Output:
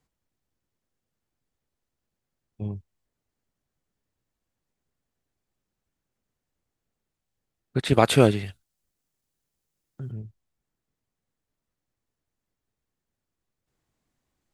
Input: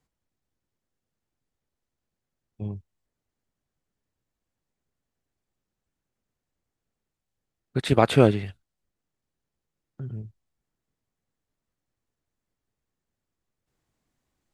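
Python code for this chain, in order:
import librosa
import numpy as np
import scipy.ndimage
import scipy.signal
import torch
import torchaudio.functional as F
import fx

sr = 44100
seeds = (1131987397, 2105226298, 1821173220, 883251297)

p1 = fx.high_shelf(x, sr, hz=4500.0, db=11.5, at=(7.93, 10.12))
p2 = fx.rider(p1, sr, range_db=10, speed_s=0.5)
p3 = p1 + F.gain(torch.from_numpy(p2), -1.5).numpy()
y = F.gain(torch.from_numpy(p3), -4.5).numpy()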